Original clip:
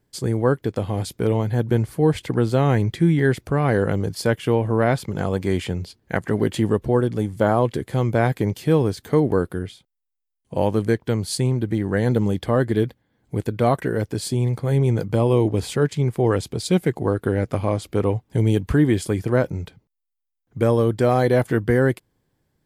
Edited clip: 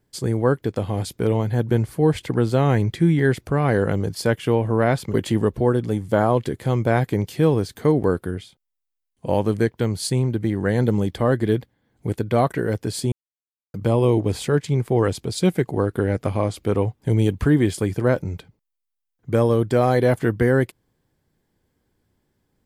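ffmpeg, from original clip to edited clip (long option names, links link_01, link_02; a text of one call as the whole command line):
ffmpeg -i in.wav -filter_complex "[0:a]asplit=4[link_01][link_02][link_03][link_04];[link_01]atrim=end=5.142[link_05];[link_02]atrim=start=6.418:end=14.4,asetpts=PTS-STARTPTS,afade=type=out:start_time=7.978:duration=0.004:curve=hsin[link_06];[link_03]atrim=start=14.4:end=15.02,asetpts=PTS-STARTPTS,volume=0[link_07];[link_04]atrim=start=15.02,asetpts=PTS-STARTPTS,afade=type=in:duration=0.004:curve=hsin[link_08];[link_06][link_07][link_08]concat=n=3:v=0:a=1[link_09];[link_05][link_09]acrossfade=duration=0.004:curve1=hsin:curve2=hsin" out.wav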